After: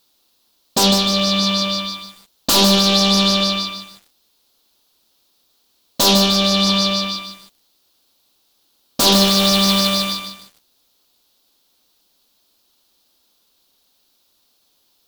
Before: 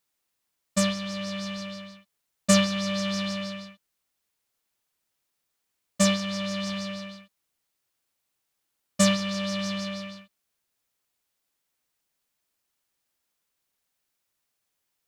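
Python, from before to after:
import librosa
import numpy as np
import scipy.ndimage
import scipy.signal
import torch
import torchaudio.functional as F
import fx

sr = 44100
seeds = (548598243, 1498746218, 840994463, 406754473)

y = fx.fold_sine(x, sr, drive_db=18, ceiling_db=-5.5)
y = fx.graphic_eq(y, sr, hz=(125, 250, 2000, 4000, 8000), db=(-9, 4, -12, 10, -7))
y = fx.quant_companded(y, sr, bits=4, at=(9.12, 10.16))
y = fx.echo_crushed(y, sr, ms=150, feedback_pct=35, bits=6, wet_db=-6.5)
y = y * librosa.db_to_amplitude(-4.0)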